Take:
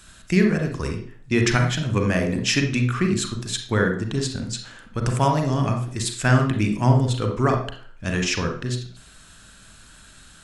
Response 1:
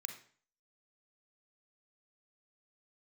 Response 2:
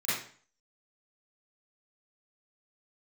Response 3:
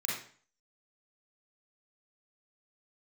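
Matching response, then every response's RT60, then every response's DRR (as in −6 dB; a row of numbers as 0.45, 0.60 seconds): 1; 0.45, 0.45, 0.45 seconds; 4.0, −14.5, −6.0 decibels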